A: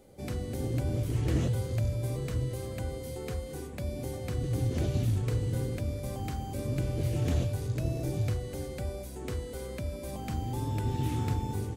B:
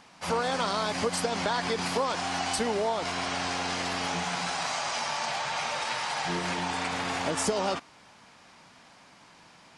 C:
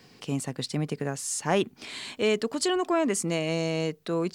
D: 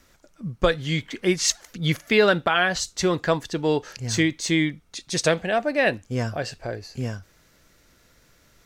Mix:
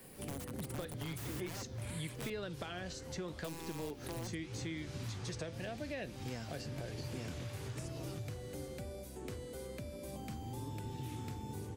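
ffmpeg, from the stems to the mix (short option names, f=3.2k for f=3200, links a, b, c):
-filter_complex "[0:a]volume=-0.5dB[a];[1:a]highpass=1.1k,adelay=400,volume=-19dB[b];[2:a]highshelf=f=7.6k:t=q:w=3:g=14,volume=-3.5dB,asplit=3[c][d][e];[c]atrim=end=2.3,asetpts=PTS-STARTPTS,afade=t=out:st=2.296:d=0.004:c=hsin[f];[d]atrim=start=2.3:end=3.44,asetpts=PTS-STARTPTS,volume=0[g];[e]atrim=start=3.44,asetpts=PTS-STARTPTS,afade=t=in:d=0.004:c=hsin[h];[f][g][h]concat=n=3:v=0:a=1[i];[3:a]adelay=150,volume=-1dB[j];[b][i]amix=inputs=2:normalize=0,aeval=exprs='(mod(20*val(0)+1,2)-1)/20':c=same,acompressor=threshold=-45dB:ratio=1.5,volume=0dB[k];[a][j]amix=inputs=2:normalize=0,flanger=delay=5.5:depth=8.8:regen=86:speed=0.83:shape=sinusoidal,acompressor=threshold=-35dB:ratio=2,volume=0dB[l];[k][l]amix=inputs=2:normalize=0,acrossover=split=100|520|2400[m][n][o][p];[m]acompressor=threshold=-55dB:ratio=4[q];[n]acompressor=threshold=-42dB:ratio=4[r];[o]acompressor=threshold=-52dB:ratio=4[s];[p]acompressor=threshold=-50dB:ratio=4[t];[q][r][s][t]amix=inputs=4:normalize=0"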